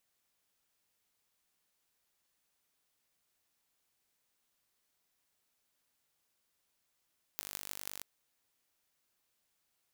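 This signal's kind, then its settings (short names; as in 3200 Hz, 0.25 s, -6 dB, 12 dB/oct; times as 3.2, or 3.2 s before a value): pulse train 49.5/s, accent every 8, -10.5 dBFS 0.64 s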